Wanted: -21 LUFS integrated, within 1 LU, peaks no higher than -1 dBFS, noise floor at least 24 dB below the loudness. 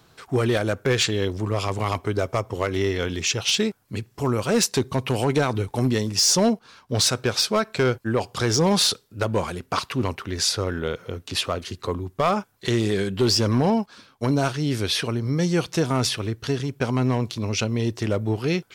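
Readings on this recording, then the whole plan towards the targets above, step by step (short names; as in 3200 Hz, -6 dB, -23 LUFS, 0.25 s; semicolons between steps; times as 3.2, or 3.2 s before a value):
clipped 0.6%; flat tops at -13.0 dBFS; loudness -23.5 LUFS; peak -13.0 dBFS; loudness target -21.0 LUFS
-> clip repair -13 dBFS; gain +2.5 dB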